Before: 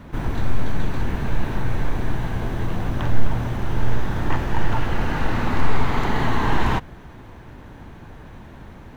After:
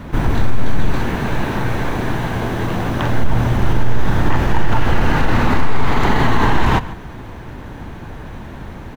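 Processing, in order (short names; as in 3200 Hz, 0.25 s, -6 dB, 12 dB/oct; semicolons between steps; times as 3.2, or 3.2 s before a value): 0.95–3.24 low shelf 95 Hz -12 dB; outdoor echo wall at 25 m, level -19 dB; maximiser +12 dB; gain -3 dB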